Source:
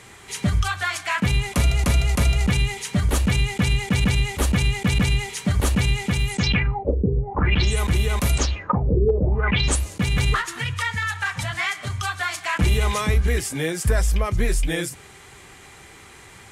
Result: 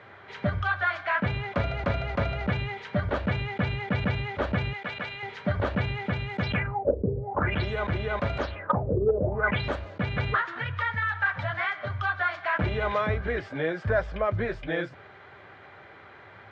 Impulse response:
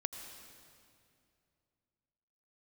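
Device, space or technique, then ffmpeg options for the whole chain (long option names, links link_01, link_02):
overdrive pedal into a guitar cabinet: -filter_complex "[0:a]asettb=1/sr,asplit=3[link_01][link_02][link_03];[link_01]atrim=end=4.734[link_04];[link_02]atrim=start=4.73:end=5.23,asetpts=PTS-STARTPTS,afade=type=in:duration=0.004:curve=qsin,afade=type=out:start_time=0.496:duration=0.004:curve=qsin,highpass=frequency=1000:poles=1[link_05];[link_03]atrim=start=5.226[link_06];[link_04][link_05]acrossfade=duration=0.004:curve1=hsin:curve2=qsin[link_07];[link_07][link_06]acrossfade=duration=0.004:curve1=qsin:curve2=hsin,asplit=2[link_08][link_09];[link_09]highpass=frequency=720:poles=1,volume=7dB,asoftclip=type=tanh:threshold=-9.5dB[link_10];[link_08][link_10]amix=inputs=2:normalize=0,lowpass=frequency=1200:poles=1,volume=-6dB,highpass=91,equalizer=frequency=100:width_type=q:width=4:gain=9,equalizer=frequency=600:width_type=q:width=4:gain=10,equalizer=frequency=1500:width_type=q:width=4:gain=7,equalizer=frequency=2700:width_type=q:width=4:gain=-4,lowpass=frequency=3900:width=0.5412,lowpass=frequency=3900:width=1.3066,volume=-3dB"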